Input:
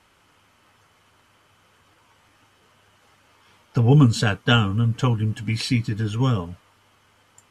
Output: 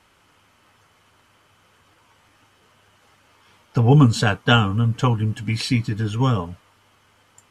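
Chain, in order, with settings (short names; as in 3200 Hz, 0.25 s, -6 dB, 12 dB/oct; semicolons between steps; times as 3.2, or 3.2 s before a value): dynamic EQ 870 Hz, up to +5 dB, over -38 dBFS, Q 1.3; gain +1 dB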